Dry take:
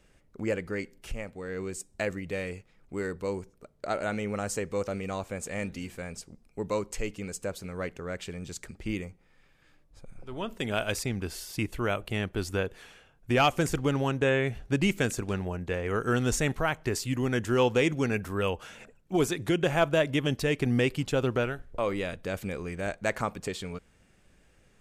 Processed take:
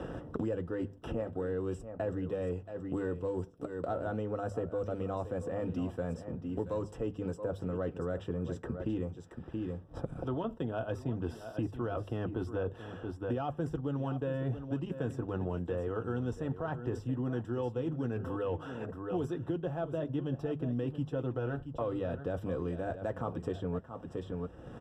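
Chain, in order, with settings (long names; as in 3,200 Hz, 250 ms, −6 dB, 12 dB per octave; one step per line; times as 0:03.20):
high-pass filter 57 Hz
mains-hum notches 50/100/150 Hz
reversed playback
downward compressor, threshold −35 dBFS, peak gain reduction 15.5 dB
reversed playback
leveller curve on the samples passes 1
moving average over 20 samples
notch comb filter 200 Hz
single-tap delay 677 ms −13 dB
multiband upward and downward compressor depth 100%
level +2 dB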